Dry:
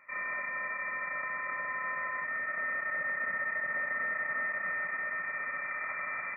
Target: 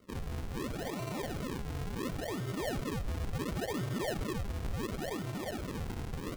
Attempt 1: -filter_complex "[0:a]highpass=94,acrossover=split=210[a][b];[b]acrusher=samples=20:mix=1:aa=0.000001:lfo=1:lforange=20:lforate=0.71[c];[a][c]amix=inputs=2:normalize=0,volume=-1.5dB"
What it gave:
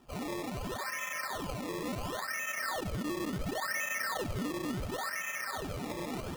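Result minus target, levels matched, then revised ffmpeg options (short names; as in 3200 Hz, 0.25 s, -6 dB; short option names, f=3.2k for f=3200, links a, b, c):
decimation with a swept rate: distortion -10 dB
-filter_complex "[0:a]highpass=94,acrossover=split=210[a][b];[b]acrusher=samples=51:mix=1:aa=0.000001:lfo=1:lforange=51:lforate=0.71[c];[a][c]amix=inputs=2:normalize=0,volume=-1.5dB"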